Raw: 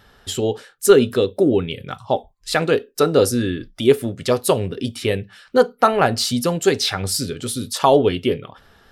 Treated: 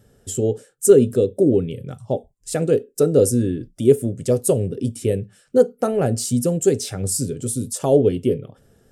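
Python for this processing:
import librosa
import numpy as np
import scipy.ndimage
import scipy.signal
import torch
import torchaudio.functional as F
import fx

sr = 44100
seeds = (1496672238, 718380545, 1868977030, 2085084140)

y = fx.graphic_eq(x, sr, hz=(125, 250, 500, 1000, 2000, 4000, 8000), db=(10, 4, 8, -12, -5, -11, 12))
y = y * 10.0 ** (-6.0 / 20.0)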